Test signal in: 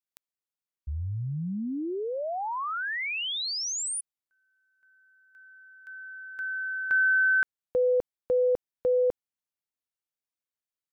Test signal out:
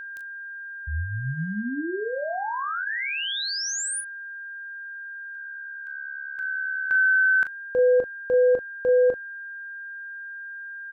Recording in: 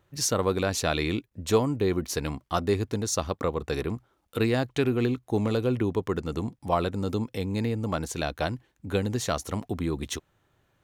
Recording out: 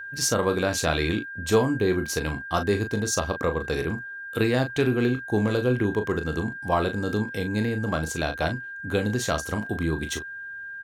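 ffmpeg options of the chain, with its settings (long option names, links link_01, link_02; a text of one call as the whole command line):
ffmpeg -i in.wav -af "aecho=1:1:24|38:0.211|0.355,aeval=exprs='val(0)+0.0158*sin(2*PI*1600*n/s)':channel_layout=same,volume=1.5dB" out.wav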